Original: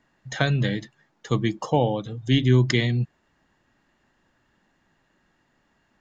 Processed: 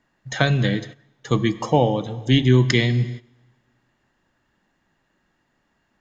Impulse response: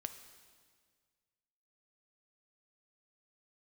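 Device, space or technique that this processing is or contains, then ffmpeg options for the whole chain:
keyed gated reverb: -filter_complex "[0:a]asplit=3[link_01][link_02][link_03];[1:a]atrim=start_sample=2205[link_04];[link_02][link_04]afir=irnorm=-1:irlink=0[link_05];[link_03]apad=whole_len=264929[link_06];[link_05][link_06]sidechaingate=range=-16dB:threshold=-43dB:ratio=16:detection=peak,volume=4.5dB[link_07];[link_01][link_07]amix=inputs=2:normalize=0,volume=-3dB"

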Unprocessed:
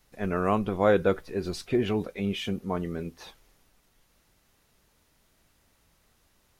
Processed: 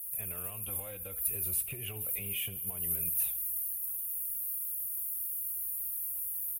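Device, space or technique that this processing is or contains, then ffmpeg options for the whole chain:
FM broadcast chain: -filter_complex "[0:a]asettb=1/sr,asplit=3[link_01][link_02][link_03];[link_01]atrim=end=0.674[link_04];[link_02]atrim=start=0.67:end=1.28,asetpts=PTS-STARTPTS,afade=type=in:duration=0.004:curve=qsin,afade=type=out:start_time=0.606:duration=0.004:curve=qsin,aecho=1:1:3.7:0.97,atrim=end_sample=26901[link_05];[link_03]atrim=start=1.276[link_06];[link_04][link_05]acrossfade=duration=0.004:curve1=hsin:curve2=qsin[link_07];[link_07][link_06]acrossfade=duration=0.004:curve1=qsin:curve2=hsin,highpass=41,dynaudnorm=framelen=140:gausssize=3:maxgain=5dB,acrossover=split=310|2400[link_08][link_09][link_10];[link_08]acompressor=threshold=-35dB:ratio=4[link_11];[link_09]acompressor=threshold=-24dB:ratio=4[link_12];[link_10]acompressor=threshold=-48dB:ratio=4[link_13];[link_11][link_12][link_13]amix=inputs=3:normalize=0,aemphasis=mode=production:type=50fm,alimiter=limit=-22dB:level=0:latency=1:release=194,asoftclip=type=hard:threshold=-24dB,lowpass=frequency=15000:width=0.5412,lowpass=frequency=15000:width=1.3066,firequalizer=gain_entry='entry(120,0);entry(220,-22);entry(590,-16);entry(870,-18);entry(1800,-18);entry(2600,-4);entry(4400,-23);entry(6300,-18);entry(9900,5)':delay=0.05:min_phase=1,aemphasis=mode=production:type=50fm,aecho=1:1:75|150|225|300|375:0.112|0.0628|0.0352|0.0197|0.011,volume=1dB"

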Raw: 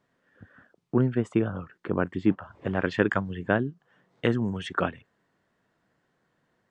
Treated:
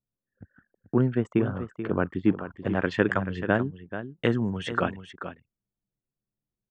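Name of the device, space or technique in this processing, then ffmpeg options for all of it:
parallel compression: -filter_complex "[0:a]asplit=2[link_01][link_02];[link_02]acompressor=threshold=-41dB:ratio=6,volume=-8.5dB[link_03];[link_01][link_03]amix=inputs=2:normalize=0,anlmdn=0.0398,aecho=1:1:434:0.282"

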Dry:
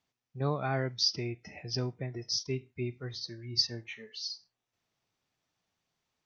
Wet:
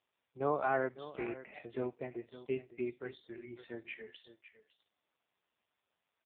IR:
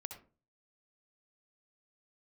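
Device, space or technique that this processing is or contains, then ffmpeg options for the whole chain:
satellite phone: -af "highpass=350,lowpass=3100,aecho=1:1:555:0.188,volume=3dB" -ar 8000 -c:a libopencore_amrnb -b:a 5150

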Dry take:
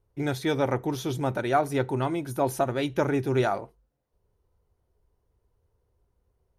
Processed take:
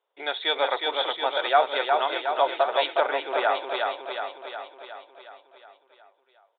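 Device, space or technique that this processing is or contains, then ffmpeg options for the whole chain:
musical greeting card: -filter_complex "[0:a]aresample=8000,aresample=44100,highpass=frequency=570:width=0.5412,highpass=frequency=570:width=1.3066,equalizer=frequency=3500:width_type=o:width=0.42:gain=9.5,aecho=1:1:364|728|1092|1456|1820|2184|2548|2912:0.631|0.366|0.212|0.123|0.0714|0.0414|0.024|0.0139,asettb=1/sr,asplit=3[link_01][link_02][link_03];[link_01]atrim=end=3.064[link_04];[link_02]atrim=start=3.06:end=3.55,asetpts=PTS-STARTPTS,afade=type=in:duration=0.004:curve=qsin,afade=type=out:start_time=0.486:duration=0.004:curve=qsin,acrossover=split=2900[link_05][link_06];[link_06]acompressor=threshold=-50dB:ratio=4:attack=1:release=60[link_07];[link_05][link_07]amix=inputs=2:normalize=0[link_08];[link_03]atrim=start=3.546[link_09];[link_04][link_08]acrossfade=duration=0.004:curve1=hsin:curve2=qsin[link_10];[link_10][link_09]acrossfade=duration=0.004:curve1=qsin:curve2=hsin,volume=4.5dB"

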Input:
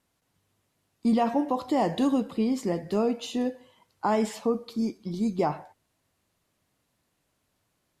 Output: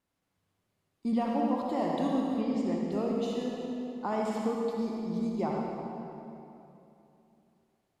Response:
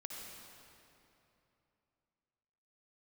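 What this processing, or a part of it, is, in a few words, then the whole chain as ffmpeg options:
swimming-pool hall: -filter_complex "[1:a]atrim=start_sample=2205[link_01];[0:a][link_01]afir=irnorm=-1:irlink=0,highshelf=frequency=4700:gain=-5.5,asettb=1/sr,asplit=3[link_02][link_03][link_04];[link_02]atrim=end=2.414[link_05];[link_03]atrim=start=2.41:end=2.92,asetpts=PTS-STARTPTS,afade=type=in:duration=0.004:curve=qsin,afade=type=out:start_time=0.506:duration=0.004:curve=qsin,lowpass=7000[link_06];[link_04]atrim=start=2.916[link_07];[link_05][link_06]acrossfade=duration=0.004:curve1=hsin:curve2=qsin[link_08];[link_08][link_07]acrossfade=duration=0.004:curve1=qsin:curve2=hsin,volume=-2dB"

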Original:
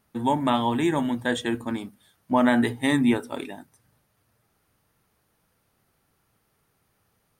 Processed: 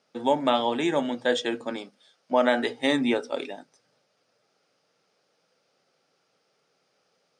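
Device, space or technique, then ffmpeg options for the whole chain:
television speaker: -filter_complex "[0:a]asettb=1/sr,asplit=3[link_01][link_02][link_03];[link_01]atrim=end=1.824[link_04];[link_02]atrim=start=1.82:end=2.79,asetpts=PTS-STARTPTS,afade=type=in:duration=0.004:curve=qsin,afade=type=out:start_time=0.966:duration=0.004:curve=qsin,equalizer=frequency=74:width=0.3:gain=-6[link_05];[link_03]atrim=start=2.786[link_06];[link_04][link_05]acrossfade=duration=0.004:curve1=hsin:curve2=qsin[link_07];[link_07][link_06]acrossfade=duration=0.004:curve1=qsin:curve2=hsin,highpass=frequency=200:width=0.5412,highpass=frequency=200:width=1.3066,equalizer=frequency=220:width_type=q:width=4:gain=-10,equalizer=frequency=320:width_type=q:width=4:gain=-6,equalizer=frequency=530:width_type=q:width=4:gain=6,equalizer=frequency=1000:width_type=q:width=4:gain=-8,equalizer=frequency=1800:width_type=q:width=4:gain=-5,equalizer=frequency=5100:width_type=q:width=4:gain=7,lowpass=frequency=6800:width=0.5412,lowpass=frequency=6800:width=1.3066,volume=2.5dB"

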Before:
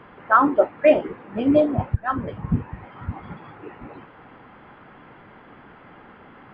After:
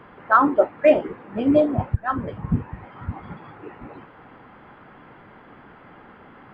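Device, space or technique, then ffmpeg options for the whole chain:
exciter from parts: -filter_complex "[0:a]asplit=2[link_01][link_02];[link_02]highpass=2700,asoftclip=type=tanh:threshold=-26.5dB,highpass=2100,volume=-10dB[link_03];[link_01][link_03]amix=inputs=2:normalize=0"

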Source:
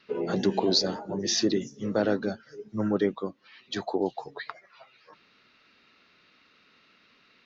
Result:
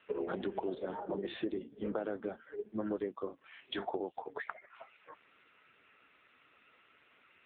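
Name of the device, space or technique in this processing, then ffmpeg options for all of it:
voicemail: -filter_complex "[0:a]asettb=1/sr,asplit=3[link_01][link_02][link_03];[link_01]atrim=end=3.204[link_04];[link_02]atrim=start=3.2:end=3.88,asetpts=PTS-STARTPTS,afade=type=in:duration=0.004:curve=qsin,afade=type=out:start_time=0.676:duration=0.004:curve=qsin,asplit=2[link_05][link_06];[link_06]adelay=40,volume=-10dB[link_07];[link_05][link_07]amix=inputs=2:normalize=0,atrim=end_sample=29988[link_08];[link_03]atrim=start=3.876[link_09];[link_04][link_08]acrossfade=duration=0.004:curve1=hsin:curve2=qsin[link_10];[link_10][link_09]acrossfade=duration=0.004:curve1=qsin:curve2=hsin,highpass=310,lowpass=3000,acompressor=threshold=-35dB:ratio=8,volume=3dB" -ar 8000 -c:a libopencore_amrnb -b:a 5900

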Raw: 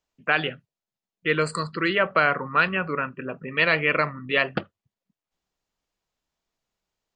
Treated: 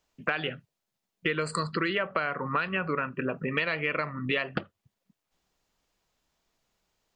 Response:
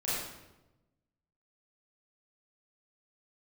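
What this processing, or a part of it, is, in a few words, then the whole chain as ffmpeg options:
serial compression, leveller first: -af "acompressor=threshold=-23dB:ratio=2,acompressor=threshold=-34dB:ratio=4,volume=7dB"

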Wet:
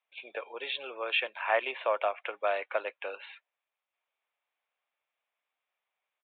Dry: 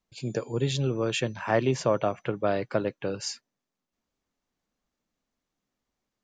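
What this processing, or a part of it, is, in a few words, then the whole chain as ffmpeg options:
musical greeting card: -af "aresample=8000,aresample=44100,highpass=frequency=610:width=0.5412,highpass=frequency=610:width=1.3066,equalizer=frequency=2400:width_type=o:width=0.34:gain=8"

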